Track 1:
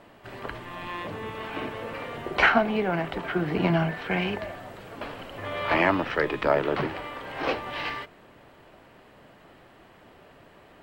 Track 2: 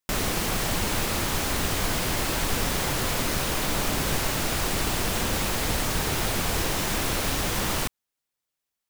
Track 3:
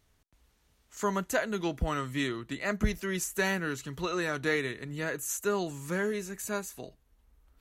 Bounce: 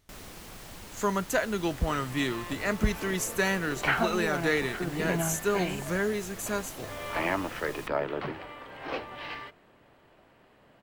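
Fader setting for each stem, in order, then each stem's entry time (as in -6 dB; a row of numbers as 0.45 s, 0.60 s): -7.0 dB, -19.0 dB, +2.0 dB; 1.45 s, 0.00 s, 0.00 s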